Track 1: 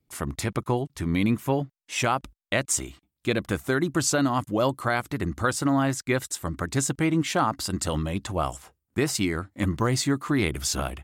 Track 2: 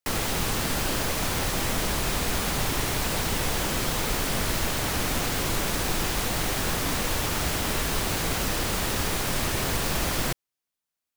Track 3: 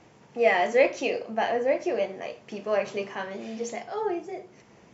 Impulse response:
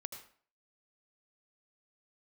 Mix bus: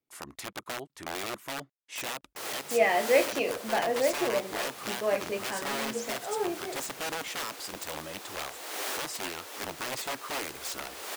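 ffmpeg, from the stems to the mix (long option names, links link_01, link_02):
-filter_complex "[0:a]lowshelf=frequency=64:gain=-10.5,aeval=exprs='(mod(10.6*val(0)+1,2)-1)/10.6':channel_layout=same,bass=frequency=250:gain=-14,treble=frequency=4000:gain=-2,volume=-7dB,asplit=2[link_01][link_02];[1:a]highpass=frequency=370:width=0.5412,highpass=frequency=370:width=1.3066,adelay=2300,volume=-5dB,asplit=2[link_03][link_04];[link_04]volume=-16dB[link_05];[2:a]adelay=2350,volume=-2.5dB[link_06];[link_02]apad=whole_len=593910[link_07];[link_03][link_07]sidechaincompress=threshold=-50dB:ratio=10:attack=6.4:release=289[link_08];[3:a]atrim=start_sample=2205[link_09];[link_05][link_09]afir=irnorm=-1:irlink=0[link_10];[link_01][link_08][link_06][link_10]amix=inputs=4:normalize=0"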